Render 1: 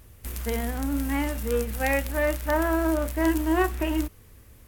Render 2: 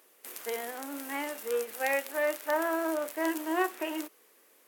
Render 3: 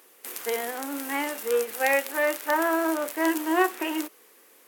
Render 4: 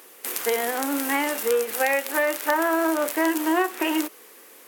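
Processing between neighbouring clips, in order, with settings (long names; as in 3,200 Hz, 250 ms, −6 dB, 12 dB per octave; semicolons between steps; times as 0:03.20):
high-pass filter 360 Hz 24 dB per octave; level −3.5 dB
notch filter 620 Hz, Q 12; level +6.5 dB
downward compressor 4 to 1, threshold −27 dBFS, peak gain reduction 10 dB; level +7.5 dB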